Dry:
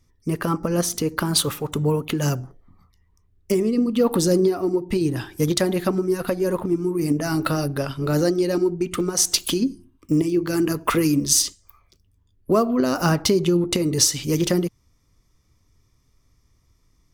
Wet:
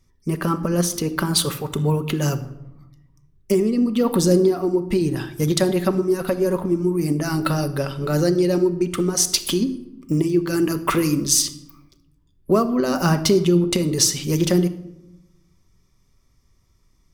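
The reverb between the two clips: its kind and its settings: simulated room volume 3100 m³, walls furnished, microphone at 1.1 m

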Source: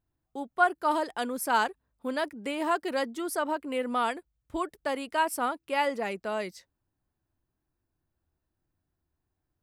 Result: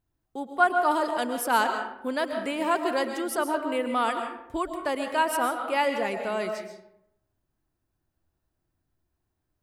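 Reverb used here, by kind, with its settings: algorithmic reverb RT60 0.8 s, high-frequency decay 0.55×, pre-delay 90 ms, DRR 5.5 dB; trim +2 dB

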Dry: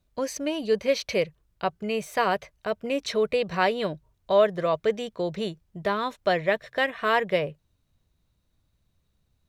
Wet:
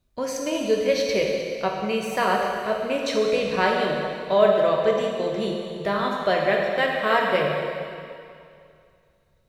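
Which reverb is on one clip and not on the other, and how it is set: plate-style reverb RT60 2.4 s, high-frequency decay 0.95×, DRR -1 dB

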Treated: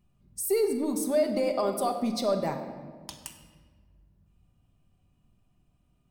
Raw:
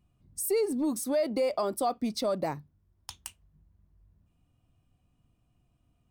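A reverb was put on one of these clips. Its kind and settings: simulated room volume 1700 m³, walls mixed, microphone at 1.2 m

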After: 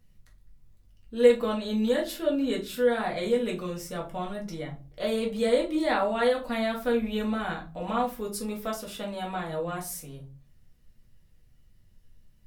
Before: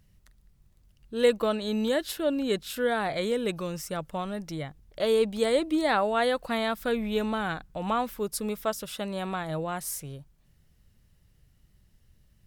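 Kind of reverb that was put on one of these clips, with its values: simulated room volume 150 m³, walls furnished, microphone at 1.9 m; trim -5.5 dB

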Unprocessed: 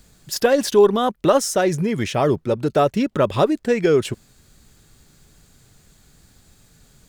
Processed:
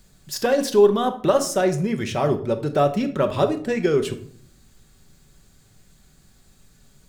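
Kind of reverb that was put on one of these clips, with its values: simulated room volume 750 m³, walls furnished, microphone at 1.1 m; trim -4 dB

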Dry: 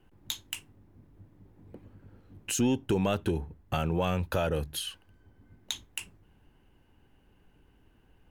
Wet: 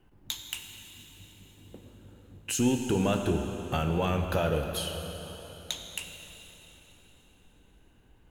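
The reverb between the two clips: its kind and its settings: plate-style reverb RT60 4 s, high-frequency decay 0.9×, DRR 4 dB

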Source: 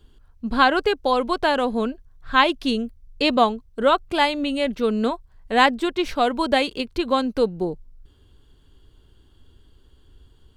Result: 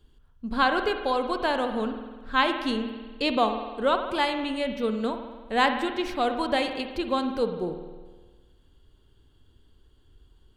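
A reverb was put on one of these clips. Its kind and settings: spring tank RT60 1.4 s, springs 50 ms, chirp 40 ms, DRR 6.5 dB; trim -6 dB

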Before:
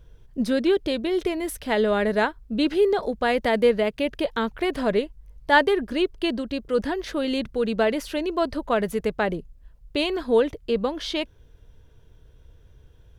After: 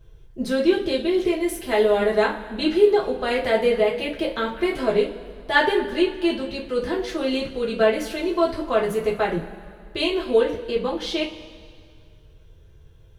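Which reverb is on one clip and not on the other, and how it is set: two-slope reverb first 0.26 s, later 2.1 s, from -19 dB, DRR -5 dB; trim -4.5 dB

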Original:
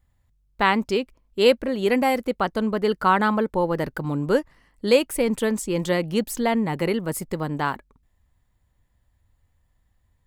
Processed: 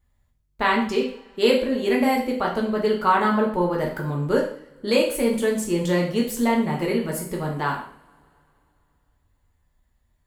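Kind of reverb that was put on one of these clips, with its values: two-slope reverb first 0.5 s, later 2.9 s, from -28 dB, DRR -2 dB; trim -4 dB

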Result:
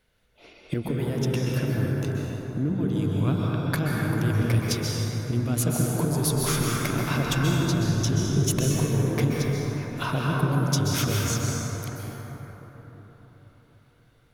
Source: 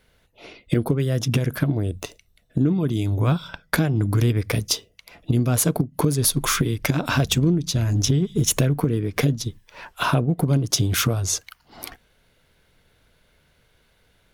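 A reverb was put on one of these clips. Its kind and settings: plate-style reverb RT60 4.6 s, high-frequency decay 0.35×, pre-delay 115 ms, DRR -3.5 dB; trim -8 dB

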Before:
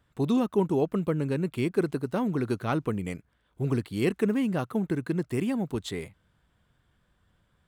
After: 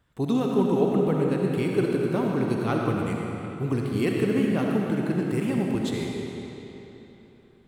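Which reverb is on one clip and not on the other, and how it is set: algorithmic reverb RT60 3.4 s, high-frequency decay 0.85×, pre-delay 25 ms, DRR -1 dB

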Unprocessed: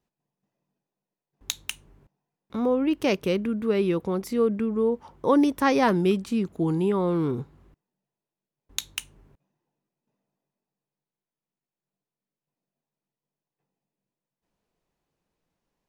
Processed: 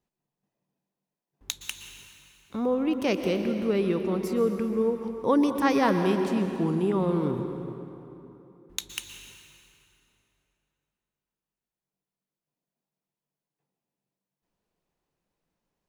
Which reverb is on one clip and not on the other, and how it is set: plate-style reverb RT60 3.1 s, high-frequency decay 0.7×, pre-delay 105 ms, DRR 6 dB; trim -2.5 dB

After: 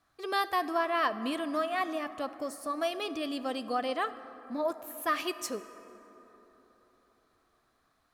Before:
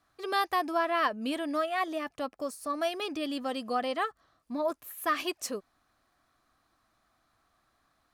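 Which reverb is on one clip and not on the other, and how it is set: plate-style reverb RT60 4 s, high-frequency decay 0.4×, DRR 12.5 dB; trim -1 dB

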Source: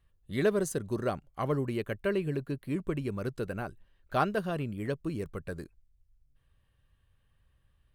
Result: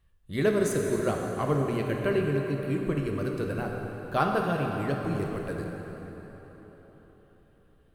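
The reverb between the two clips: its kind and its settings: plate-style reverb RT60 4.4 s, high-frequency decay 0.7×, DRR 0.5 dB; trim +1.5 dB

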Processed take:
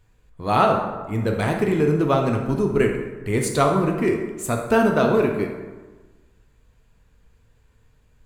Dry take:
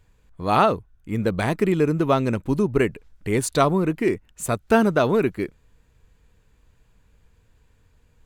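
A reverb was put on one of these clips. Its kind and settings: plate-style reverb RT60 1.3 s, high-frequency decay 0.55×, DRR 1.5 dB; trim -1.5 dB

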